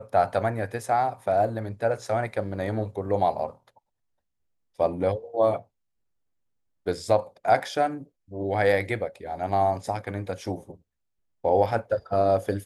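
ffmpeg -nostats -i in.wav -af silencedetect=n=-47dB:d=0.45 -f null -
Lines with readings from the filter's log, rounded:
silence_start: 3.78
silence_end: 4.79 | silence_duration: 1.01
silence_start: 5.62
silence_end: 6.86 | silence_duration: 1.24
silence_start: 10.76
silence_end: 11.44 | silence_duration: 0.68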